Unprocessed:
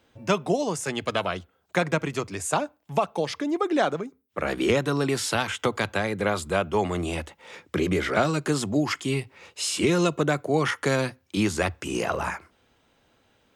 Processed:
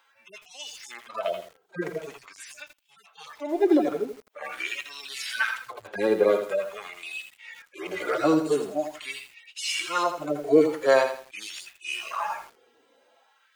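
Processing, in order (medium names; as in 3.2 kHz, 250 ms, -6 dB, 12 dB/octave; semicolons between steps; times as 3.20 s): harmonic-percussive separation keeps harmonic; LFO high-pass sine 0.45 Hz 360–2800 Hz; bit-crushed delay 82 ms, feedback 35%, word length 8-bit, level -8.5 dB; trim +3.5 dB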